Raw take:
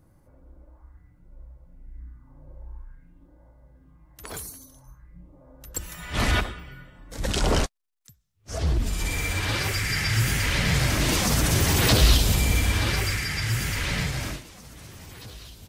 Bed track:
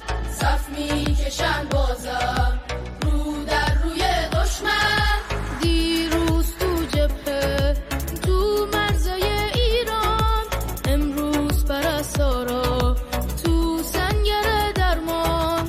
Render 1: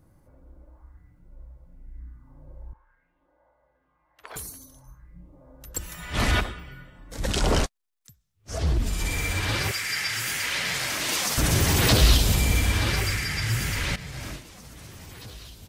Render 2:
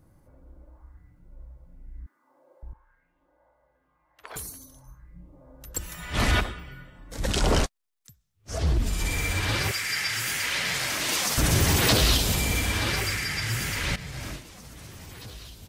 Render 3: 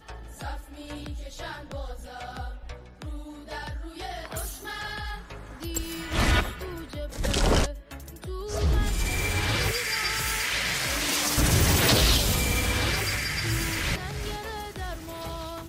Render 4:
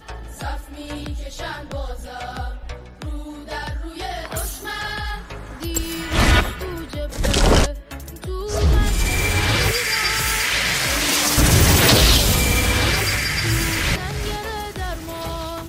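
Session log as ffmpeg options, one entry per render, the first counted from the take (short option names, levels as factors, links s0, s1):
-filter_complex "[0:a]asettb=1/sr,asplit=3[s0][s1][s2];[s0]atrim=end=2.734[s3];[s1]atrim=start=2.73:end=4.36,asetpts=PTS-STARTPTS,afade=t=in:d=0.004:c=qsin,afade=t=out:st=1.626:d=0.004:c=qsin,acrossover=split=490 3600:gain=0.0708 1 0.0891[s4][s5][s6];[s4][s5][s6]amix=inputs=3:normalize=0[s7];[s2]atrim=start=4.356[s8];[s3][s7]acrossfade=d=0.004:c1=hsin:c2=qsin[s9];[s9][s8]acrossfade=d=0.004:c1=qsin:c2=hsin,asettb=1/sr,asplit=3[s10][s11][s12];[s10]atrim=end=9.714[s13];[s11]atrim=start=9.71:end=11.38,asetpts=PTS-STARTPTS,afade=t=in:d=0.004:c=qsin,afade=t=out:st=1.666:d=0.004:c=qsin,highpass=f=950:p=1[s14];[s12]atrim=start=11.376[s15];[s13][s14]acrossfade=d=0.004:c1=hsin:c2=qsin[s16];[s16][s15]acrossfade=d=0.004:c1=qsin:c2=hsin,asplit=2[s17][s18];[s17]atrim=end=13.96,asetpts=PTS-STARTPTS,afade=t=out:st=13.956:d=0.004:c=hsin:silence=0.149624[s19];[s18]atrim=start=13.96,asetpts=PTS-STARTPTS,afade=t=in:d=0.57:silence=0.149624[s20];[s19][s20]concat=n=2:v=0:a=1"
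-filter_complex "[0:a]asettb=1/sr,asplit=3[s0][s1][s2];[s0]atrim=end=2.064[s3];[s1]atrim=start=2.06:end=2.63,asetpts=PTS-STARTPTS,afade=t=in:d=0.004:c=qsin,afade=t=out:st=0.566:d=0.004:c=qsin,highpass=f=390:w=0.5412,highpass=f=390:w=1.3066[s4];[s2]atrim=start=2.626[s5];[s3][s4]acrossfade=d=0.004:c1=hsin:c2=qsin[s6];[s6][s5]acrossfade=d=0.004:c1=qsin:c2=hsin,asettb=1/sr,asplit=3[s7][s8][s9];[s7]atrim=end=11.764[s10];[s8]atrim=start=11.76:end=13.84,asetpts=PTS-STARTPTS,afade=t=in:d=0.004:c=qsin,afade=t=out:st=2.076:d=0.004:c=qsin,lowshelf=f=120:g=-8[s11];[s9]atrim=start=13.836[s12];[s10][s11]acrossfade=d=0.004:c1=hsin:c2=qsin[s13];[s13][s12]acrossfade=d=0.004:c1=qsin:c2=hsin"
-filter_complex "[1:a]volume=0.168[s0];[0:a][s0]amix=inputs=2:normalize=0"
-af "volume=2.37,alimiter=limit=0.708:level=0:latency=1"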